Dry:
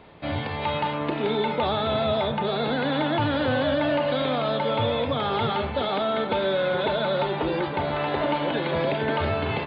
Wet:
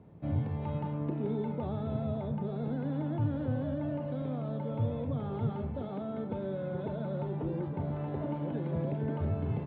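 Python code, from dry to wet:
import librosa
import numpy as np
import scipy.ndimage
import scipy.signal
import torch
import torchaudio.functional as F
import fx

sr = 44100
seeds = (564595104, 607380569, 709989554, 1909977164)

y = fx.rider(x, sr, range_db=3, speed_s=2.0)
y = fx.bandpass_q(y, sr, hz=130.0, q=1.2)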